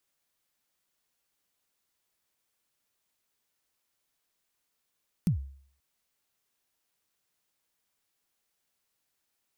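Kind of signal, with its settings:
synth kick length 0.53 s, from 200 Hz, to 68 Hz, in 107 ms, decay 0.55 s, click on, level −19 dB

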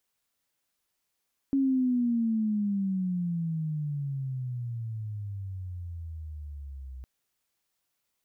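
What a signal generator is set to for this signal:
pitch glide with a swell sine, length 5.51 s, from 276 Hz, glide −25.5 semitones, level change −17 dB, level −21.5 dB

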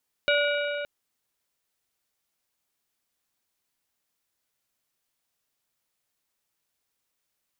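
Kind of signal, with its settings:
struck metal plate, length 0.57 s, lowest mode 580 Hz, modes 5, decay 3.59 s, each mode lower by 2 dB, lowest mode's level −22 dB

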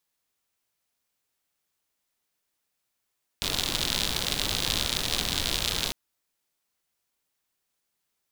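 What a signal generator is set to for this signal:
rain-like ticks over hiss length 2.50 s, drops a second 87, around 3,700 Hz, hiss −2.5 dB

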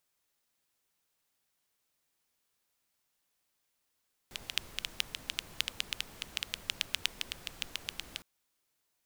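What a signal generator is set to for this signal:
rain-like ticks over hiss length 3.91 s, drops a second 7.8, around 3,000 Hz, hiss −11 dB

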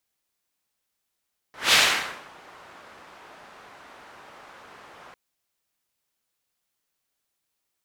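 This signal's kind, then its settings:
pass-by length 3.60 s, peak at 0:00.19, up 0.19 s, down 0.62 s, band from 1,100 Hz, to 3,000 Hz, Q 1, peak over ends 31 dB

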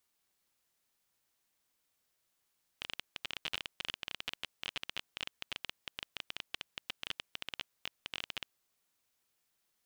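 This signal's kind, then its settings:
Geiger counter clicks 18 per second −20 dBFS 5.68 s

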